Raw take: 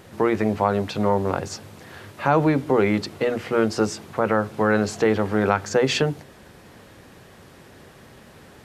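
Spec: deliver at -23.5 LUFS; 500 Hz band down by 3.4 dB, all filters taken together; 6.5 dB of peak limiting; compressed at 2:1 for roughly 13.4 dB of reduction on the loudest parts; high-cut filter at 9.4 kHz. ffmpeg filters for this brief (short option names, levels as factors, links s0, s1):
-af "lowpass=9400,equalizer=f=500:t=o:g=-4,acompressor=threshold=0.00794:ratio=2,volume=5.96,alimiter=limit=0.335:level=0:latency=1"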